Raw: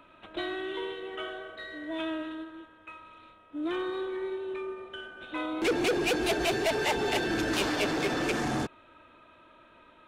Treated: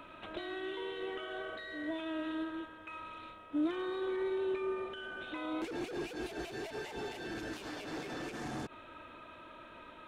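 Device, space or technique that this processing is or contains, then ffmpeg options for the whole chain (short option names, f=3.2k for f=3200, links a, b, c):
de-esser from a sidechain: -filter_complex "[0:a]asplit=2[a][b];[b]highpass=f=7k:p=1,apad=whole_len=444358[c];[a][c]sidechaincompress=threshold=-56dB:ratio=10:attack=1.4:release=72,volume=4.5dB"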